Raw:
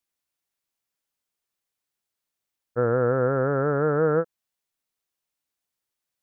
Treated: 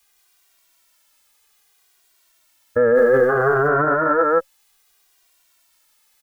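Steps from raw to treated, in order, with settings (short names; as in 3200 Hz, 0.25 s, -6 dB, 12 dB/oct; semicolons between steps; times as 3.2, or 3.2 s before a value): notch 540 Hz, Q 17; in parallel at +1.5 dB: negative-ratio compressor -25 dBFS, ratio -0.5; on the sum: echo 0.159 s -5.5 dB; 2.95–3.68 requantised 10-bit, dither none; graphic EQ 125/250/500 Hz -6/-5/-4 dB; 2.76–3.29 spectral gain 660–1600 Hz -12 dB; bell 140 Hz -9.5 dB 1.8 oct; maximiser +20.5 dB; endless flanger 2 ms -0.63 Hz; gain -3.5 dB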